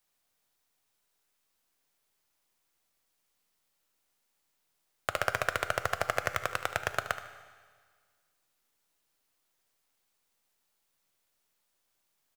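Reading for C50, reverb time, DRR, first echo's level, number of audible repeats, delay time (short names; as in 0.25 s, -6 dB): 9.5 dB, 1.7 s, 9.0 dB, -13.5 dB, 2, 75 ms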